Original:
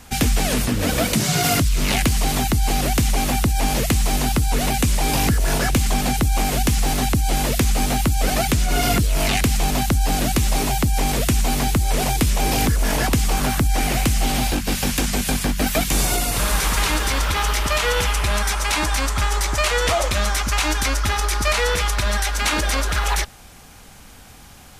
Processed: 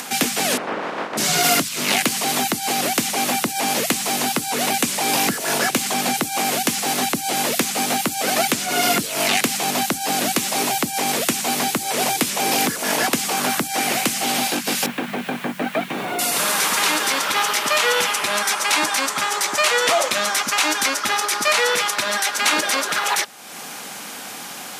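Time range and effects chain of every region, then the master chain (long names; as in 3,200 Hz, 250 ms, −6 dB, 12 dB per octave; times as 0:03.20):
0:00.56–0:01.17: ceiling on every frequency bin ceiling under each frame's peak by 26 dB + low-pass filter 1,100 Hz
0:14.86–0:16.19: high-frequency loss of the air 480 metres + notch filter 4,900 Hz, Q 9.4 + bit-depth reduction 8 bits, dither triangular
whole clip: high-pass filter 180 Hz 24 dB per octave; low-shelf EQ 320 Hz −8 dB; upward compression, threshold −26 dBFS; level +3.5 dB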